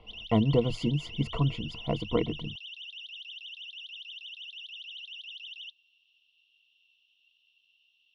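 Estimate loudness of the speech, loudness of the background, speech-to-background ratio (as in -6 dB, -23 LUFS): -29.5 LUFS, -41.0 LUFS, 11.5 dB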